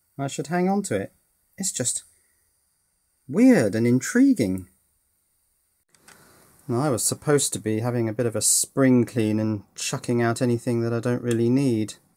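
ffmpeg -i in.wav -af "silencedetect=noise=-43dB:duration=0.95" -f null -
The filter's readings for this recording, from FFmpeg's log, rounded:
silence_start: 2.05
silence_end: 3.29 | silence_duration: 1.23
silence_start: 4.65
silence_end: 5.95 | silence_duration: 1.30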